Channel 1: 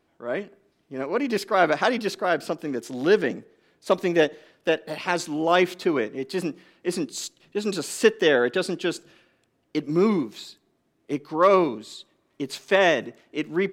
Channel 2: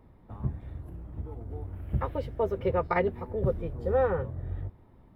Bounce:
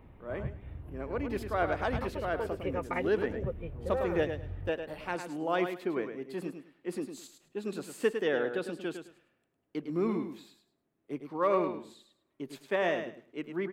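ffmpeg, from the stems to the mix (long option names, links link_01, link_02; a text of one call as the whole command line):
ffmpeg -i stem1.wav -i stem2.wav -filter_complex "[0:a]volume=-10dB,asplit=2[link_01][link_02];[link_02]volume=-8dB[link_03];[1:a]equalizer=frequency=2700:width_type=o:width=0.83:gain=13.5,acompressor=threshold=-51dB:ratio=1.5,volume=2dB[link_04];[link_03]aecho=0:1:105|210|315:1|0.21|0.0441[link_05];[link_01][link_04][link_05]amix=inputs=3:normalize=0,equalizer=frequency=5300:width_type=o:width=1.5:gain=-10" out.wav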